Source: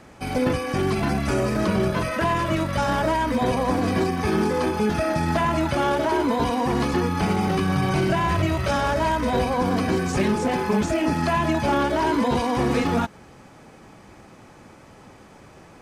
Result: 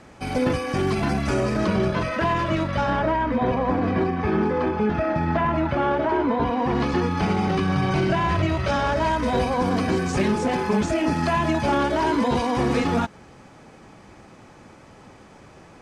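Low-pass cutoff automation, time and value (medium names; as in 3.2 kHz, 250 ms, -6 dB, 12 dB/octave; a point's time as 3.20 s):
1.11 s 9.5 kHz
2.07 s 5.2 kHz
2.60 s 5.2 kHz
3.16 s 2.3 kHz
6.49 s 2.3 kHz
6.97 s 5.6 kHz
8.89 s 5.6 kHz
9.29 s 9.1 kHz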